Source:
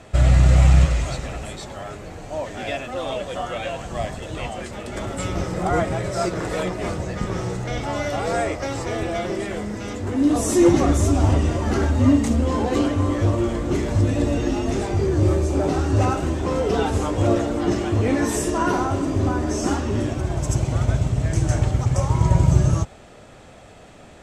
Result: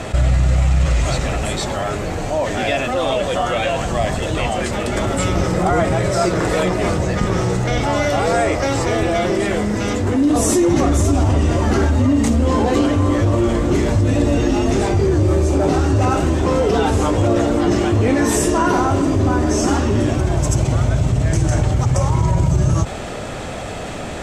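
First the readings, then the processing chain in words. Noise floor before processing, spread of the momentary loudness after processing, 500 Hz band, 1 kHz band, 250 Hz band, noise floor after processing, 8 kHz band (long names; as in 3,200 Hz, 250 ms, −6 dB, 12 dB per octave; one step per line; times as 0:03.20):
−45 dBFS, 5 LU, +5.5 dB, +6.0 dB, +4.5 dB, −27 dBFS, +6.0 dB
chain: brickwall limiter −11.5 dBFS, peak gain reduction 8 dB
envelope flattener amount 50%
level +3 dB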